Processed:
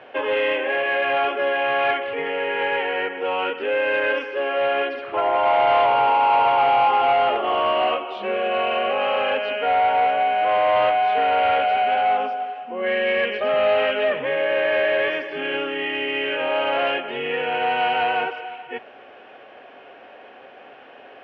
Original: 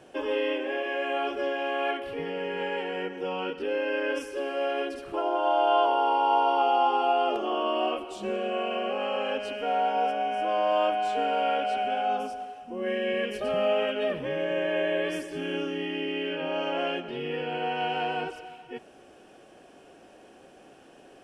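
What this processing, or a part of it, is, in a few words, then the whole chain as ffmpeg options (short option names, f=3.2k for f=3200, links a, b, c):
overdrive pedal into a guitar cabinet: -filter_complex "[0:a]asplit=2[a][b];[b]highpass=f=720:p=1,volume=17dB,asoftclip=type=tanh:threshold=-11.5dB[c];[a][c]amix=inputs=2:normalize=0,lowpass=f=2.3k:p=1,volume=-6dB,highpass=84,equalizer=f=180:t=q:w=4:g=-10,equalizer=f=330:t=q:w=4:g=-9,equalizer=f=2.1k:t=q:w=4:g=5,lowpass=f=3.5k:w=0.5412,lowpass=f=3.5k:w=1.3066,volume=2dB"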